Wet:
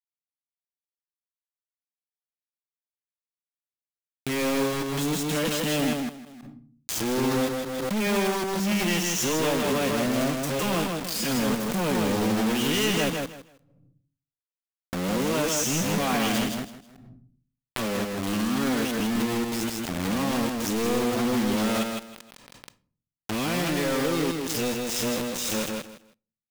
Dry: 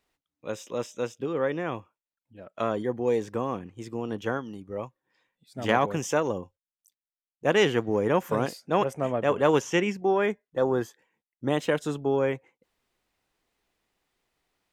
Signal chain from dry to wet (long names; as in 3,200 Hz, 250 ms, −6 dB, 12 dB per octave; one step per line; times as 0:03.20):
played backwards from end to start
flat-topped bell 750 Hz −11 dB 2.9 octaves
in parallel at −1 dB: downward compressor 6 to 1, threshold −45 dBFS, peak gain reduction 20.5 dB
on the sum: low shelf with overshoot 160 Hz −9.5 dB, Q 1.5
phase-vocoder stretch with locked phases 1.8×
log-companded quantiser 2 bits
repeating echo 159 ms, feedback 22%, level −3.5 dB
on a send at −22.5 dB: convolution reverb RT60 0.45 s, pre-delay 7 ms
on the sum: background raised ahead of every attack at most 26 dB per second